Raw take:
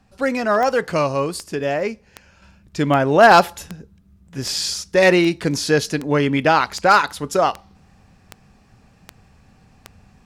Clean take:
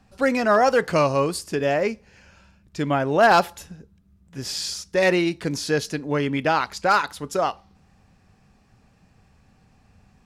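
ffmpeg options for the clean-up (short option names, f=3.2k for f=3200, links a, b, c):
-af "adeclick=t=4,asetnsamples=n=441:p=0,asendcmd='2.42 volume volume -5.5dB',volume=0dB"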